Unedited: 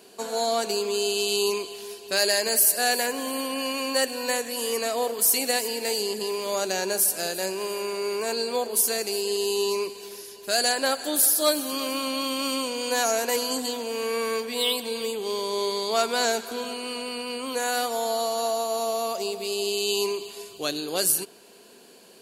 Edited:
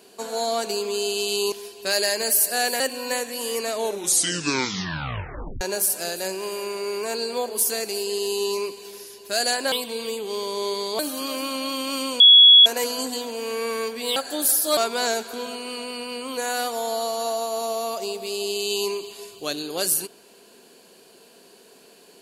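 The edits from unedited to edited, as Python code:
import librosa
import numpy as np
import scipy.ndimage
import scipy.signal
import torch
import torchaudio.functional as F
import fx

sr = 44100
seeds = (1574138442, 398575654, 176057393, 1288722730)

y = fx.edit(x, sr, fx.cut(start_s=1.52, length_s=0.26),
    fx.cut(start_s=3.06, length_s=0.92),
    fx.tape_stop(start_s=4.87, length_s=1.92),
    fx.swap(start_s=10.9, length_s=0.61, other_s=14.68, other_length_s=1.27),
    fx.bleep(start_s=12.72, length_s=0.46, hz=3360.0, db=-7.0), tone=tone)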